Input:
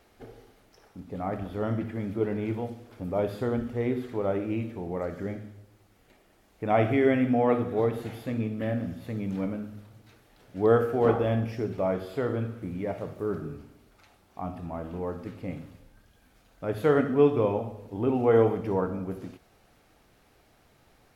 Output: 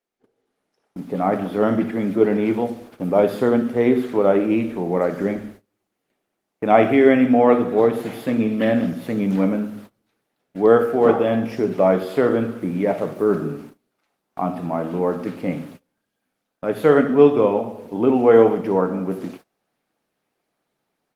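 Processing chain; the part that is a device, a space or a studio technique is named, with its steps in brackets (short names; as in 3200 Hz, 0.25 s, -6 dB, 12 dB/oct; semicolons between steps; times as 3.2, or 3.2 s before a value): 8.47–8.89 dynamic EQ 3300 Hz, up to +6 dB, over -59 dBFS, Q 1.3; video call (HPF 160 Hz 24 dB/oct; AGC gain up to 12.5 dB; gate -39 dBFS, range -24 dB; Opus 24 kbps 48000 Hz)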